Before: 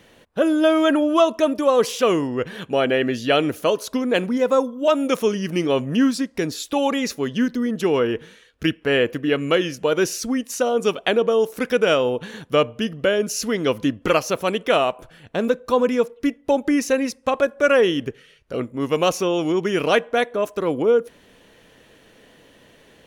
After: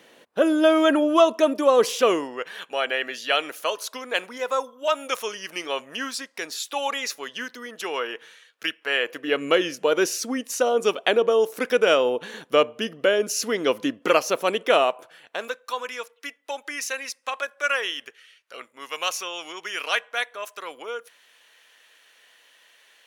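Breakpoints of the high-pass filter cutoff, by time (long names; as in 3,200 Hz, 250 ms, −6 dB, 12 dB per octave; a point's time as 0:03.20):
0:02.01 280 Hz
0:02.48 850 Hz
0:08.99 850 Hz
0:09.45 330 Hz
0:14.80 330 Hz
0:15.66 1,300 Hz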